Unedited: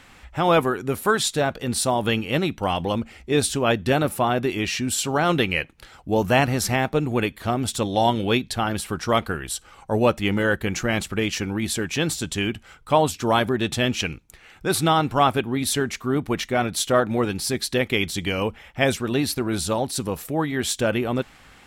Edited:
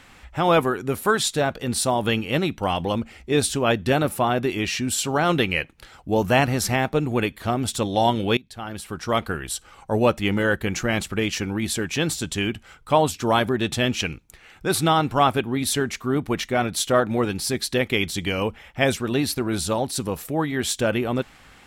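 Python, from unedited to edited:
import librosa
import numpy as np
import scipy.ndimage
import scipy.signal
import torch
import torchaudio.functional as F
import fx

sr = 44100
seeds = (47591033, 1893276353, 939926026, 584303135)

y = fx.edit(x, sr, fx.fade_in_from(start_s=8.37, length_s=0.99, floor_db=-21.0), tone=tone)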